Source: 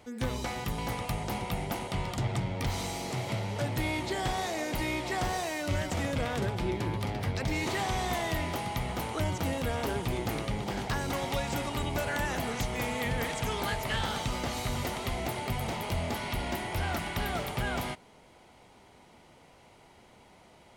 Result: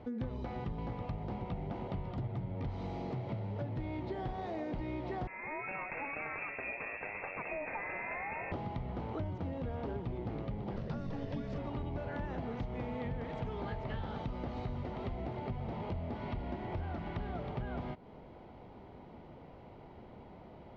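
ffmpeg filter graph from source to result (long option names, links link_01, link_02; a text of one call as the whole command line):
ffmpeg -i in.wav -filter_complex "[0:a]asettb=1/sr,asplit=3[link_01][link_02][link_03];[link_01]atrim=end=5.274[link_04];[link_02]atrim=start=5.27:end=8.52,asetpts=PTS-STARTPTS,afade=type=in:duration=0.004:curve=qsin,afade=type=out:start_time=3.246:duration=0.004:curve=qsin,highpass=220,lowpass=frequency=2400:width_type=q:width=0.5098,lowpass=frequency=2400:width_type=q:width=0.6013,lowpass=frequency=2400:width_type=q:width=0.9,lowpass=frequency=2400:width_type=q:width=2.563,afreqshift=-2800[link_05];[link_03]atrim=start=8.516[link_06];[link_04][link_05]acrossfade=duration=0.004:curve1=hsin:curve2=qsin[link_07];[link_07][link_06]acrossfade=duration=0.004:curve1=qsin:curve2=hsin,asettb=1/sr,asplit=3[link_08][link_09][link_10];[link_08]atrim=end=10.764[link_11];[link_09]atrim=start=10.76:end=11.58,asetpts=PTS-STARTPTS,afade=type=in:duration=0.004:curve=qsin,afade=type=out:start_time=0.816:duration=0.004:curve=qsin,equalizer=frequency=5900:width_type=o:width=0.79:gain=7.5,afreqshift=-270[link_12];[link_10]atrim=start=11.576[link_13];[link_11][link_12]acrossfade=duration=0.004:curve1=hsin:curve2=qsin[link_14];[link_14][link_13]acrossfade=duration=0.004:curve1=qsin:curve2=hsin,lowpass=frequency=4500:width=0.5412,lowpass=frequency=4500:width=1.3066,tiltshelf=frequency=1300:gain=9.5,acompressor=threshold=-35dB:ratio=6,volume=-1.5dB" out.wav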